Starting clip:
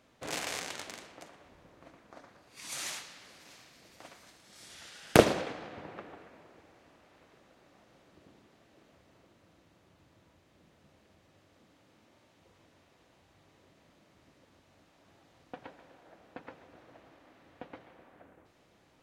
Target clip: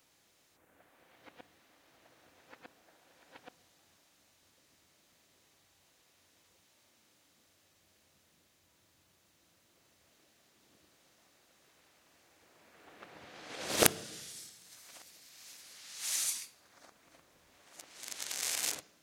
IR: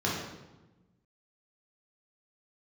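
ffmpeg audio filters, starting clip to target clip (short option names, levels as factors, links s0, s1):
-filter_complex "[0:a]areverse,crystalizer=i=7:c=0,asplit=2[s0][s1];[1:a]atrim=start_sample=2205[s2];[s1][s2]afir=irnorm=-1:irlink=0,volume=0.0501[s3];[s0][s3]amix=inputs=2:normalize=0,volume=0.282"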